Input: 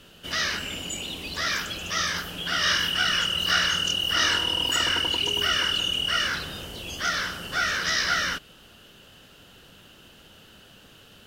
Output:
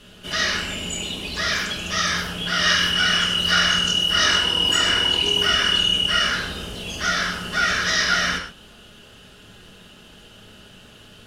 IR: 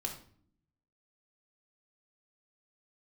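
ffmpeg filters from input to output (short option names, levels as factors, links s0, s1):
-filter_complex "[1:a]atrim=start_sample=2205,atrim=end_sample=3528,asetrate=23373,aresample=44100[s0];[0:a][s0]afir=irnorm=-1:irlink=0"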